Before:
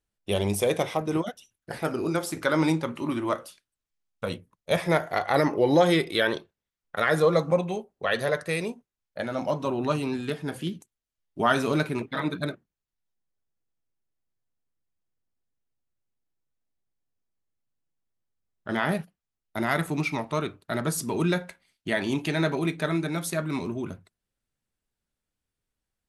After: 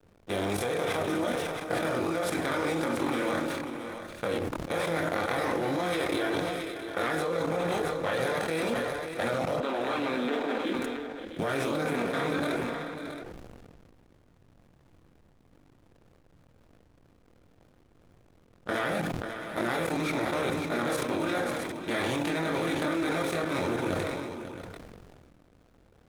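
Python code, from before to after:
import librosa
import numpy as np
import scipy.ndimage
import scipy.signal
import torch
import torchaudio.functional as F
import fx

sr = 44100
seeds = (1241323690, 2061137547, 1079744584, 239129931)

p1 = fx.bin_compress(x, sr, power=0.4)
p2 = fx.chorus_voices(p1, sr, voices=4, hz=0.3, base_ms=23, depth_ms=2.2, mix_pct=55)
p3 = fx.level_steps(p2, sr, step_db=13)
p4 = fx.cheby1_bandpass(p3, sr, low_hz=220.0, high_hz=3900.0, order=4, at=(9.6, 10.75))
p5 = fx.backlash(p4, sr, play_db=-40.0)
p6 = p5 + fx.echo_multitap(p5, sr, ms=(545, 671), db=(-12.0, -11.5), dry=0)
p7 = fx.sustainer(p6, sr, db_per_s=24.0)
y = p7 * 10.0 ** (-3.5 / 20.0)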